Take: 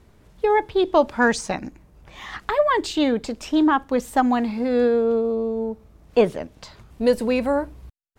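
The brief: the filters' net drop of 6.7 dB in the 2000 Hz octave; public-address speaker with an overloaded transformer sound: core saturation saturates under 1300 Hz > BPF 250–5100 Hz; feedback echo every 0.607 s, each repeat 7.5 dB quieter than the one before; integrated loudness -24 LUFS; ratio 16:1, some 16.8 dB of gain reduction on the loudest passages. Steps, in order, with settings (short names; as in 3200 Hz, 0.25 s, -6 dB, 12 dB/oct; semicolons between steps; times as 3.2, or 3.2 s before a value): bell 2000 Hz -9 dB; compressor 16:1, threshold -29 dBFS; feedback echo 0.607 s, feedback 42%, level -7.5 dB; core saturation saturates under 1300 Hz; BPF 250–5100 Hz; gain +13 dB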